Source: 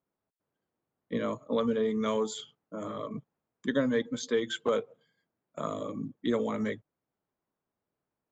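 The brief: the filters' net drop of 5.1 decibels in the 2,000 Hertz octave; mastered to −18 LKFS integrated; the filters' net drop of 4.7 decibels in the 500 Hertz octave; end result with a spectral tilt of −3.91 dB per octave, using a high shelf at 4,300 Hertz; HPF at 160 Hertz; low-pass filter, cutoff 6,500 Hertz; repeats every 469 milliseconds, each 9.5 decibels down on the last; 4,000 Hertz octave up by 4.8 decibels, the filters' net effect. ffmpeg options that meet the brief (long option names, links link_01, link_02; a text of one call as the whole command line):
ffmpeg -i in.wav -af "highpass=160,lowpass=6500,equalizer=frequency=500:width_type=o:gain=-5,equalizer=frequency=2000:width_type=o:gain=-8.5,equalizer=frequency=4000:width_type=o:gain=6,highshelf=frequency=4300:gain=7,aecho=1:1:469|938|1407|1876:0.335|0.111|0.0365|0.012,volume=16.5dB" out.wav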